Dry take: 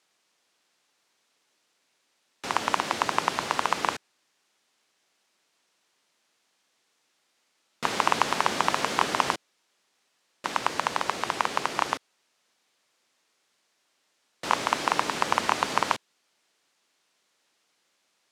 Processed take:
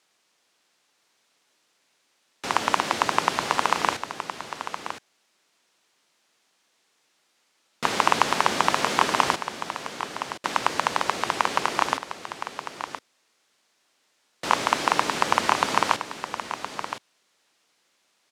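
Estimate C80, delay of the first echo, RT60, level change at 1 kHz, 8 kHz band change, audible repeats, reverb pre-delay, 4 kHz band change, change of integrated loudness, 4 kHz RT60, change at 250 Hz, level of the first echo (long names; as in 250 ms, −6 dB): no reverb audible, 1,017 ms, no reverb audible, +3.5 dB, +3.5 dB, 1, no reverb audible, +3.5 dB, +1.5 dB, no reverb audible, +3.5 dB, −10.0 dB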